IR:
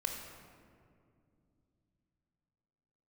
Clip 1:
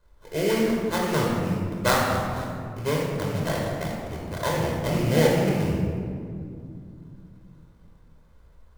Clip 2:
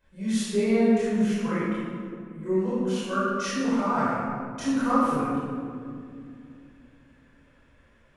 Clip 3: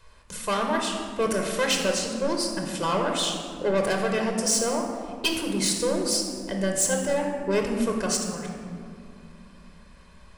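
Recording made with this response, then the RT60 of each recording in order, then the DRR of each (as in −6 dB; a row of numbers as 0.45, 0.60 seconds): 3; 2.4, 2.4, 2.4 seconds; −2.5, −11.5, 2.0 decibels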